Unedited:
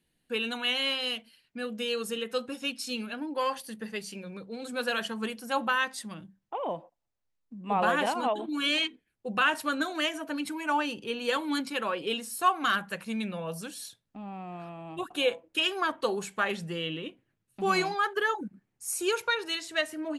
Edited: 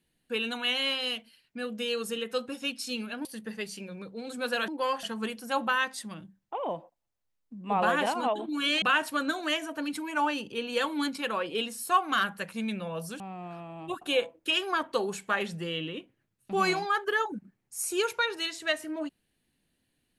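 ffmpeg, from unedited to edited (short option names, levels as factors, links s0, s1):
-filter_complex "[0:a]asplit=6[s0][s1][s2][s3][s4][s5];[s0]atrim=end=3.252[s6];[s1]atrim=start=3.598:end=5.032[s7];[s2]atrim=start=3.248:end=3.602[s8];[s3]atrim=start=5.028:end=8.822[s9];[s4]atrim=start=9.338:end=13.722[s10];[s5]atrim=start=14.288[s11];[s6][s7]acrossfade=d=0.004:c1=hsin:c2=hsin[s12];[s12][s8]acrossfade=d=0.004:c1=hsin:c2=hsin[s13];[s13][s9]acrossfade=d=0.004:c1=hsin:c2=hsin[s14];[s14][s10]acrossfade=d=0.004:c1=hsin:c2=hsin[s15];[s15][s11]acrossfade=d=0.004:c1=hsin:c2=hsin"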